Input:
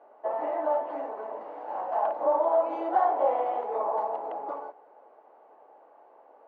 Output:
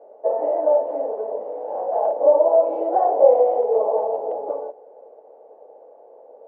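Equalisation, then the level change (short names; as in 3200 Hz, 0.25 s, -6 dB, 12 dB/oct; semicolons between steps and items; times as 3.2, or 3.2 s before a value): EQ curve 330 Hz 0 dB, 480 Hz +13 dB, 1200 Hz -13 dB; +4.0 dB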